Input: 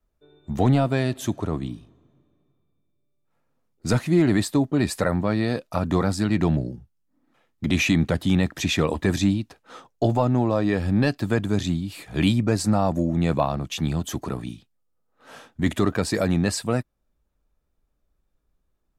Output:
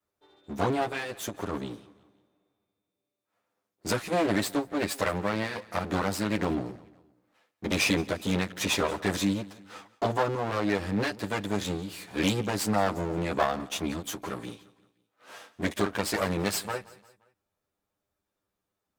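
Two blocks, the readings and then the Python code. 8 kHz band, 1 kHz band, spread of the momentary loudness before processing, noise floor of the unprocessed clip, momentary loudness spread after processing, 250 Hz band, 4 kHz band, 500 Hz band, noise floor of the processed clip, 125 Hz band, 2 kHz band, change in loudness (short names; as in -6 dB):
-1.5 dB, -1.5 dB, 10 LU, -73 dBFS, 12 LU, -8.0 dB, -2.0 dB, -4.0 dB, -85 dBFS, -11.5 dB, -1.5 dB, -6.0 dB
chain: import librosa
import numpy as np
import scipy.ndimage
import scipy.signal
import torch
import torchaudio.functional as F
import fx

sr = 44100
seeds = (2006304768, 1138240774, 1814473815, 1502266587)

y = fx.lower_of_two(x, sr, delay_ms=10.0)
y = fx.highpass(y, sr, hz=380.0, slope=6)
y = fx.echo_feedback(y, sr, ms=174, feedback_pct=45, wet_db=-20.5)
y = fx.end_taper(y, sr, db_per_s=300.0)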